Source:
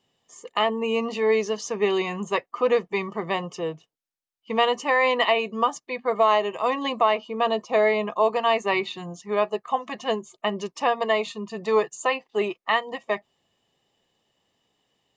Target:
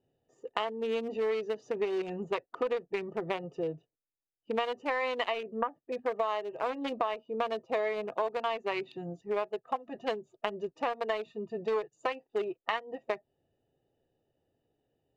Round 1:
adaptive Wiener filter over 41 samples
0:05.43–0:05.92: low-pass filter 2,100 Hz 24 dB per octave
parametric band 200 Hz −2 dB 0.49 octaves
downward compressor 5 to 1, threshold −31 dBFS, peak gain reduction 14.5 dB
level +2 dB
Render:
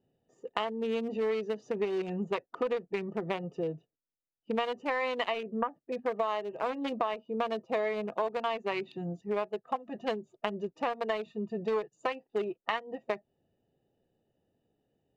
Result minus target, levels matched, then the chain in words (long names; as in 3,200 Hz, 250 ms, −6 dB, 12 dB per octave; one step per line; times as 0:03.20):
250 Hz band +3.5 dB
adaptive Wiener filter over 41 samples
0:05.43–0:05.92: low-pass filter 2,100 Hz 24 dB per octave
parametric band 200 Hz −10.5 dB 0.49 octaves
downward compressor 5 to 1, threshold −31 dBFS, peak gain reduction 14.5 dB
level +2 dB